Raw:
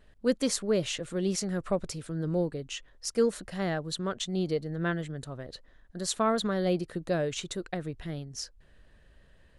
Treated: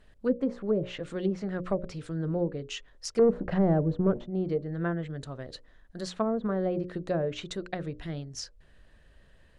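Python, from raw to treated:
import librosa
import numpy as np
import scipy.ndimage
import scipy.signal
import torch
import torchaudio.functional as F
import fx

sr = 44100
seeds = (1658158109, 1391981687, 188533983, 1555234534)

y = fx.leveller(x, sr, passes=3, at=(3.19, 4.27))
y = fx.hum_notches(y, sr, base_hz=60, count=10)
y = fx.env_lowpass_down(y, sr, base_hz=560.0, full_db=-23.0)
y = y * 10.0 ** (1.0 / 20.0)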